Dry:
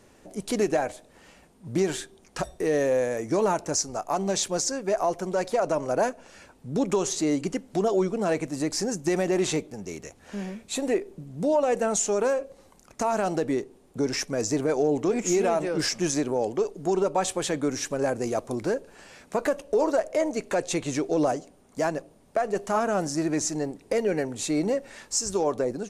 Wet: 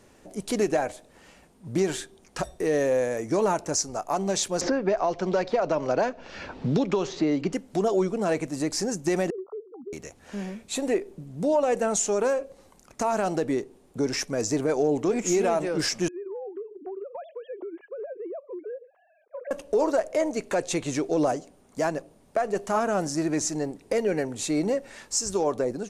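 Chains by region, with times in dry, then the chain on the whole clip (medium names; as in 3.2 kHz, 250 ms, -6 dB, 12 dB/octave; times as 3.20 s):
4.61–7.53 s: low-pass 4.8 kHz 24 dB/octave + three bands compressed up and down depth 100%
9.30–9.93 s: formants replaced by sine waves + brick-wall FIR low-pass 1.4 kHz + compression 12:1, threshold -32 dBFS
16.08–19.51 s: formants replaced by sine waves + band-pass filter 390 Hz, Q 0.86 + compression 20:1, threshold -32 dBFS
whole clip: none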